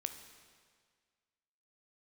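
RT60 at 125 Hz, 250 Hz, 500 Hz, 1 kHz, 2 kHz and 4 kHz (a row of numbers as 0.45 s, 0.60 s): 1.8 s, 1.7 s, 1.8 s, 1.8 s, 1.8 s, 1.7 s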